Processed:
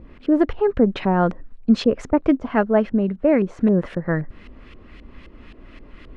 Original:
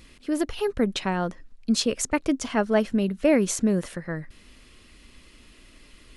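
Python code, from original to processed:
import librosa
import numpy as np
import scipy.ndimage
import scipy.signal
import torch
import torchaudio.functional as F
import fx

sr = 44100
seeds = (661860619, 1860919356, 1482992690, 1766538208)

y = fx.filter_lfo_lowpass(x, sr, shape='saw_up', hz=3.8, low_hz=590.0, high_hz=2700.0, q=0.88)
y = fx.rider(y, sr, range_db=4, speed_s=0.5)
y = y * librosa.db_to_amplitude(6.0)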